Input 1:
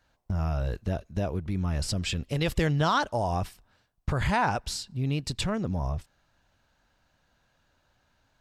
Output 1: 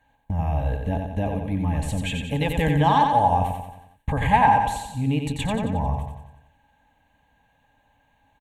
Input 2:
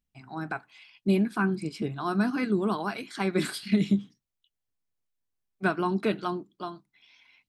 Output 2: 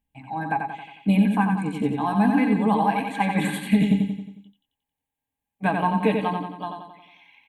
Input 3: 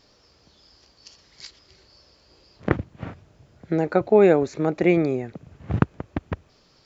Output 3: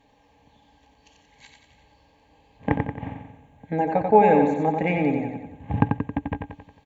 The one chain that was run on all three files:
fixed phaser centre 1400 Hz, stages 6; added harmonics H 6 -38 dB, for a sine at -7 dBFS; small resonant body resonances 290/430/830/1600 Hz, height 16 dB, ringing for 70 ms; on a send: feedback echo 90 ms, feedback 51%, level -5 dB; on the sum: match loudness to -23 LUFS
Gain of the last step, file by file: +3.0, +4.5, -1.5 dB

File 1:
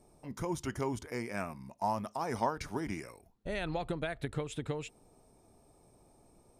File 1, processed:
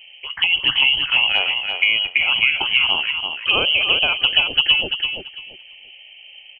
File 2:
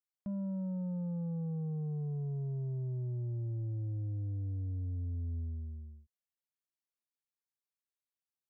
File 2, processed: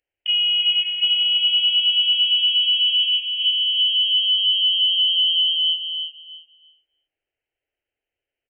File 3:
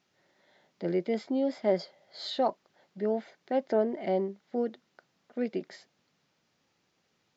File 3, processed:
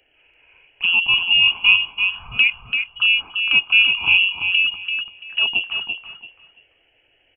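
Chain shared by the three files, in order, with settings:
notches 60/120/180/240/300/360 Hz; inverted band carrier 3100 Hz; envelope phaser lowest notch 190 Hz, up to 1800 Hz, full sweep at -33.5 dBFS; on a send: feedback echo 0.338 s, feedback 22%, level -6 dB; on the sum: match loudness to -16 LUFS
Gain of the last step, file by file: +21.5, +18.5, +16.5 dB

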